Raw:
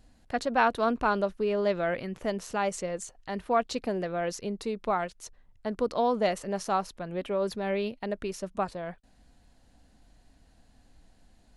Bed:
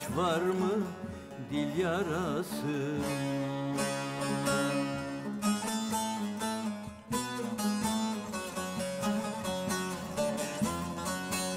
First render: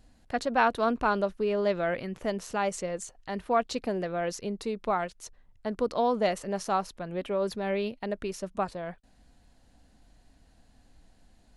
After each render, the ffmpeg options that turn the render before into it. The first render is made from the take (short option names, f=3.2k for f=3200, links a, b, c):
-af anull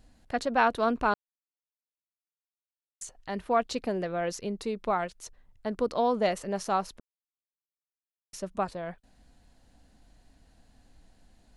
-filter_complex "[0:a]asplit=5[a][b][c][d][e];[a]atrim=end=1.14,asetpts=PTS-STARTPTS,afade=t=out:st=1.136:d=0.004:c=hsin[f];[b]atrim=start=1.14:end=3.01,asetpts=PTS-STARTPTS,volume=0[g];[c]atrim=start=3.01:end=7,asetpts=PTS-STARTPTS,afade=t=in:d=0.004:c=hsin,afade=t=out:st=3.986:d=0.004:c=hsin[h];[d]atrim=start=7:end=8.33,asetpts=PTS-STARTPTS,volume=0[i];[e]atrim=start=8.33,asetpts=PTS-STARTPTS,afade=t=in:d=0.004:c=hsin[j];[f][g][h][i][j]concat=n=5:v=0:a=1"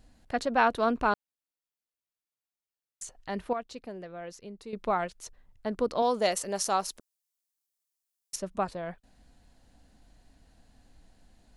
-filter_complex "[0:a]asettb=1/sr,asplit=3[a][b][c];[a]atrim=end=6.024[d];[b]atrim=start=6.02:end=8.36,asetpts=PTS-STARTPTS,afade=t=in:d=0.004:c=qsin,afade=t=out:st=2.336:d=0.004:c=qsin,bass=f=250:g=-7,treble=f=4k:g=12[e];[c]atrim=start=8.356[f];[d][e]acrossfade=d=0.004:c1=hsin:c2=qsin[g];[g][f]acrossfade=d=0.004:c1=qsin:c2=hsin,asplit=3[h][i][j];[h]atrim=end=3.532[k];[i]atrim=start=3.528:end=4.732,asetpts=PTS-STARTPTS,volume=-10.5dB[l];[j]atrim=start=4.728[m];[k][l]acrossfade=d=0.004:c1=hsin:c2=hsin[n];[n][m]acrossfade=d=0.004:c1=hsin:c2=hsin"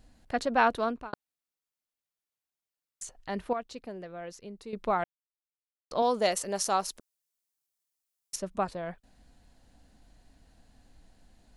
-filter_complex "[0:a]asplit=4[a][b][c][d];[a]atrim=end=1.13,asetpts=PTS-STARTPTS,afade=t=out:st=0.72:d=0.41[e];[b]atrim=start=1.13:end=5.04,asetpts=PTS-STARTPTS,afade=t=in:d=0.004:c=hsin,afade=t=out:st=3.906:d=0.004:c=hsin[f];[c]atrim=start=5.04:end=5.91,asetpts=PTS-STARTPTS,volume=0[g];[d]atrim=start=5.91,asetpts=PTS-STARTPTS,afade=t=in:d=0.004:c=hsin[h];[e][f][g][h]concat=n=4:v=0:a=1"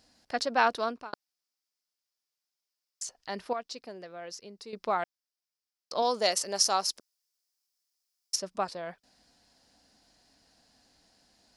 -af "highpass=f=380:p=1,equalizer=f=5.1k:t=o:w=0.52:g=12.5"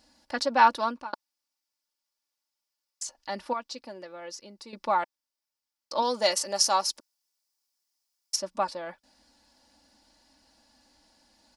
-af "equalizer=f=940:t=o:w=0.29:g=7.5,aecho=1:1:3.5:0.66"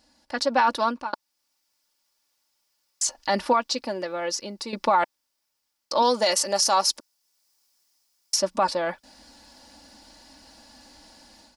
-af "dynaudnorm=f=300:g=3:m=12.5dB,alimiter=limit=-11.5dB:level=0:latency=1:release=11"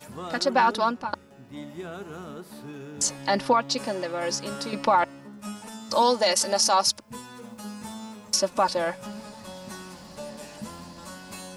-filter_complex "[1:a]volume=-7dB[a];[0:a][a]amix=inputs=2:normalize=0"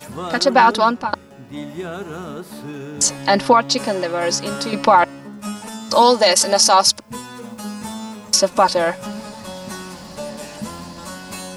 -af "volume=8.5dB"